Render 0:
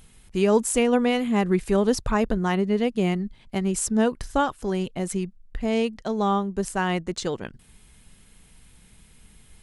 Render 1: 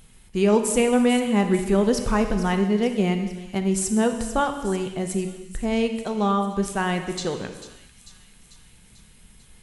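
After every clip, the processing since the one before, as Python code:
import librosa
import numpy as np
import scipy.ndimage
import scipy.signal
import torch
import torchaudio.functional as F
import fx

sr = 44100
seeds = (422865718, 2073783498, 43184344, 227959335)

y = fx.echo_wet_highpass(x, sr, ms=444, feedback_pct=61, hz=3700.0, wet_db=-11)
y = fx.rev_gated(y, sr, seeds[0], gate_ms=430, shape='falling', drr_db=6.0)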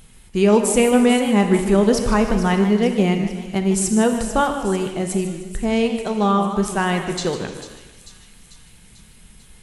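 y = fx.echo_warbled(x, sr, ms=152, feedback_pct=44, rate_hz=2.8, cents=193, wet_db=-12.5)
y = y * librosa.db_to_amplitude(4.0)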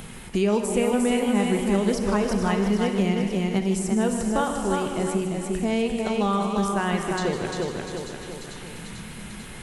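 y = fx.echo_feedback(x, sr, ms=347, feedback_pct=30, wet_db=-5)
y = fx.band_squash(y, sr, depth_pct=70)
y = y * librosa.db_to_amplitude(-7.0)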